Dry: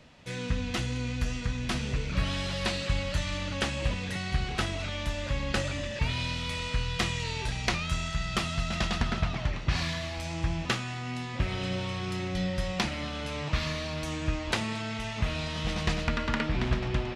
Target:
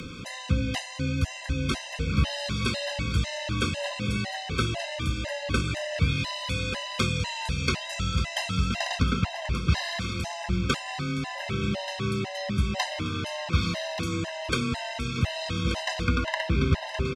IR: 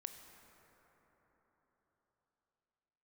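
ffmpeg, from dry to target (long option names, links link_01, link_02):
-af "acompressor=mode=upward:threshold=-30dB:ratio=2.5,aecho=1:1:1181|2362|3543|4724|5905:0.282|0.124|0.0546|0.024|0.0106,afreqshift=20,afftfilt=real='re*gt(sin(2*PI*2*pts/sr)*(1-2*mod(floor(b*sr/1024/530),2)),0)':imag='im*gt(sin(2*PI*2*pts/sr)*(1-2*mod(floor(b*sr/1024/530),2)),0)':win_size=1024:overlap=0.75,volume=5dB"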